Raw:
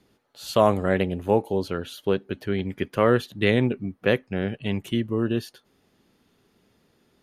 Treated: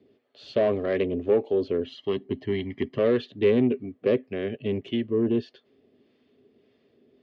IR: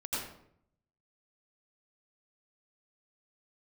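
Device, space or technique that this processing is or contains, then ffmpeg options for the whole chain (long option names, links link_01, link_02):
guitar amplifier with harmonic tremolo: -filter_complex "[0:a]bandreject=frequency=3900:width=19,acrossover=split=690[link_01][link_02];[link_01]aeval=exprs='val(0)*(1-0.5/2+0.5/2*cos(2*PI*1.7*n/s))':channel_layout=same[link_03];[link_02]aeval=exprs='val(0)*(1-0.5/2-0.5/2*cos(2*PI*1.7*n/s))':channel_layout=same[link_04];[link_03][link_04]amix=inputs=2:normalize=0,asoftclip=type=tanh:threshold=-20dB,highpass=96,equalizer=frequency=180:width_type=q:width=4:gain=-7,equalizer=frequency=250:width_type=q:width=4:gain=8,equalizer=frequency=410:width_type=q:width=4:gain=10,equalizer=frequency=620:width_type=q:width=4:gain=5,equalizer=frequency=900:width_type=q:width=4:gain=-10,equalizer=frequency=1400:width_type=q:width=4:gain=-9,lowpass=frequency=4000:width=0.5412,lowpass=frequency=4000:width=1.3066,asettb=1/sr,asplit=3[link_05][link_06][link_07];[link_05]atrim=end=1.854[link_08];[link_06]atrim=start=1.85:end=2.99,asetpts=PTS-STARTPTS,afade=type=in:duration=0.004:curve=qsin,afade=type=out:start_time=1.136:duration=0.004:curve=qsin,aecho=1:1:1:0.75,atrim=end_sample=50274[link_09];[link_07]atrim=start=2.986[link_10];[link_08][link_09]acrossfade=duration=0.004:curve1=hsin:curve2=qsin[link_11];[link_11][link_10]acrossfade=duration=0.004:curve1=qsin:curve2=hsin"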